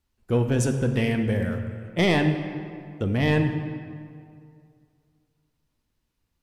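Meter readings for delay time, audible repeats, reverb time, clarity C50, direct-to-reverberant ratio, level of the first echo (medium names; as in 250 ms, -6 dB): no echo, no echo, 2.4 s, 7.0 dB, 5.5 dB, no echo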